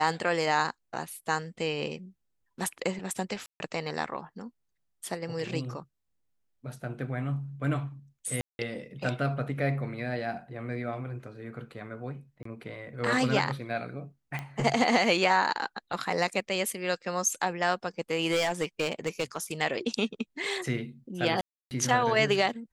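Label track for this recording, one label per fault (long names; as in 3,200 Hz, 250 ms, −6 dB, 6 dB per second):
3.460000	3.600000	drop-out 141 ms
8.410000	8.590000	drop-out 181 ms
12.430000	12.450000	drop-out 24 ms
14.390000	14.390000	click −21 dBFS
18.310000	19.620000	clipping −21.5 dBFS
21.410000	21.710000	drop-out 299 ms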